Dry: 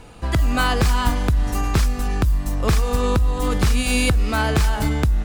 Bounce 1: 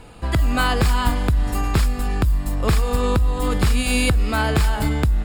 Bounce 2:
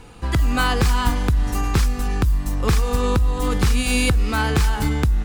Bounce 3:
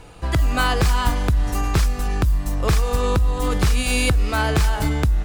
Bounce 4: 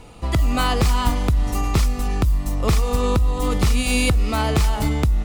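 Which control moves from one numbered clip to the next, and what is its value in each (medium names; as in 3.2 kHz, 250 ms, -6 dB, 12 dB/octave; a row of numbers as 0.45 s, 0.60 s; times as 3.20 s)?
band-stop, frequency: 6 kHz, 630 Hz, 230 Hz, 1.6 kHz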